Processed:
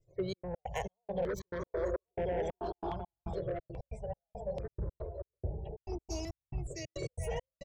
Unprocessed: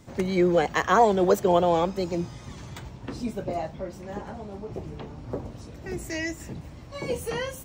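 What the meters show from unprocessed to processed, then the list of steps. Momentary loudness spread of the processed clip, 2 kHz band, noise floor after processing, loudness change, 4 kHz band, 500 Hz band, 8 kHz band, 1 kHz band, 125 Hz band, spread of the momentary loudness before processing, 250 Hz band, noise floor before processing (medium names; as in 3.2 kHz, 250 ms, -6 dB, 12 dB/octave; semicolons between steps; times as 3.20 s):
7 LU, -16.5 dB, under -85 dBFS, -14.0 dB, -13.0 dB, -11.5 dB, -10.0 dB, -16.5 dB, -7.5 dB, 20 LU, -15.0 dB, -44 dBFS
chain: median filter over 3 samples; gate -37 dBFS, range -21 dB; bass shelf 61 Hz +12 dB; static phaser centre 600 Hz, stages 4; bouncing-ball echo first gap 660 ms, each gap 0.65×, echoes 5; dynamic bell 2.2 kHz, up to -3 dB, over -44 dBFS, Q 0.83; spectral gate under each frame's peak -30 dB strong; compression 6:1, threshold -24 dBFS, peak gain reduction 9.5 dB; trance gate "xxx.x.xx.." 138 bpm -60 dB; saturation -26.5 dBFS, distortion -13 dB; stepped phaser 2.4 Hz 230–4200 Hz; trim +1 dB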